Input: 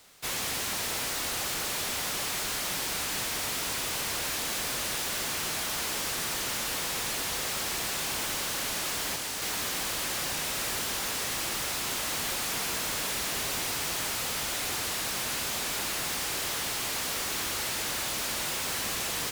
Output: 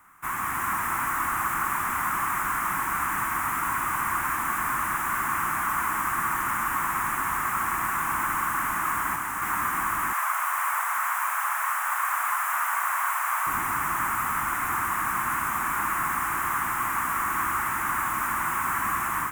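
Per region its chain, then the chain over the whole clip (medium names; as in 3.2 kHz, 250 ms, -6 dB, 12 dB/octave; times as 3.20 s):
10.13–13.47 s: high-pass 84 Hz + frequency shift +500 Hz
whole clip: FFT filter 330 Hz 0 dB, 510 Hz -18 dB, 1.1 kHz +15 dB, 2.1 kHz +1 dB, 4.3 kHz -28 dB, 7.3 kHz -8 dB, 13 kHz -2 dB; level rider gain up to 3 dB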